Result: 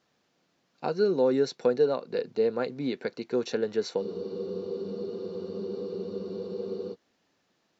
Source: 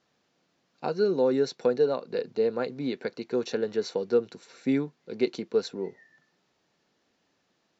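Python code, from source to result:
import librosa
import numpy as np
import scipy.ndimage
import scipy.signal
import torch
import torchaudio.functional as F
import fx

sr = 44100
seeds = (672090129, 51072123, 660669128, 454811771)

y = fx.spec_freeze(x, sr, seeds[0], at_s=4.04, hold_s=2.9)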